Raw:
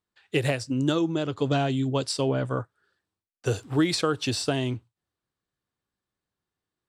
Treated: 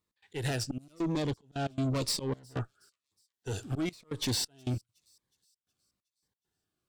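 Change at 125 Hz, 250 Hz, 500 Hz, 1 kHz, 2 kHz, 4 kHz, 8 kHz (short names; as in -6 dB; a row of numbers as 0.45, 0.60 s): -6.0, -8.5, -10.5, -9.5, -9.5, -5.0, -2.0 dB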